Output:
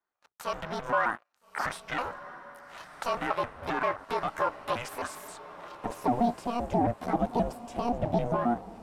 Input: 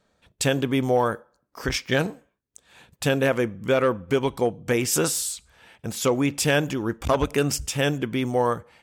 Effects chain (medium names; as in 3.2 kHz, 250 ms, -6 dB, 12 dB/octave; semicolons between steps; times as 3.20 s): pitch shift switched off and on +8.5 st, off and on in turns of 132 ms; high-pass 190 Hz 6 dB/octave; peaking EQ 11 kHz +14 dB 1.7 oct; compression 8:1, threshold -30 dBFS, peak gain reduction 20 dB; waveshaping leveller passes 5; band-pass sweep 1.1 kHz -> 490 Hz, 5.09–6.41 s; ring modulator 240 Hz; echo that smears into a reverb 1308 ms, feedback 40%, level -15 dB